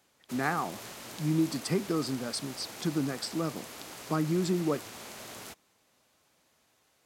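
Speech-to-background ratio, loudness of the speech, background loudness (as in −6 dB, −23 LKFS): 11.5 dB, −32.0 LKFS, −43.5 LKFS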